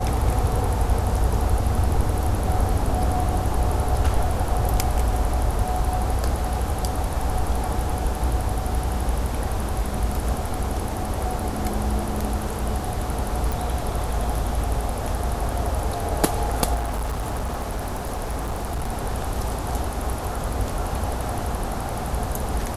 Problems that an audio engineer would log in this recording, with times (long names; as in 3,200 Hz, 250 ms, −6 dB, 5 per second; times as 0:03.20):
0:13.52: click
0:16.74–0:18.91: clipping −22.5 dBFS